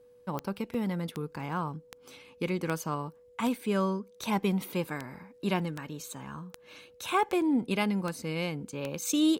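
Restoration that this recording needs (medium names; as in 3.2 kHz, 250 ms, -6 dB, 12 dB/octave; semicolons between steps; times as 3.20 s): de-click; band-stop 490 Hz, Q 30; interpolate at 0.74/7.29/8.22 s, 4.1 ms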